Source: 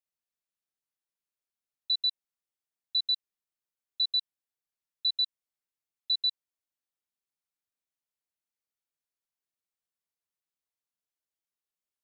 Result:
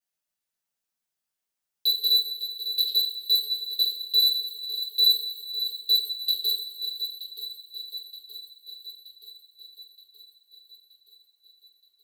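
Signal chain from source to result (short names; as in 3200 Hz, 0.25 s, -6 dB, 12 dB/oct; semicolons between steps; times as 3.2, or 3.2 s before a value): slices in reverse order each 0.103 s, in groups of 3; in parallel at -9.5 dB: wavefolder -30.5 dBFS; on the sum: high shelf 3700 Hz +2.5 dB; sample leveller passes 3; compressor, threshold -26 dBFS, peak gain reduction 3.5 dB; on a send: swung echo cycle 0.924 s, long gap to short 1.5:1, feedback 57%, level -11 dB; on the sum: two-slope reverb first 0.37 s, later 2.6 s, from -18 dB, DRR -7.5 dB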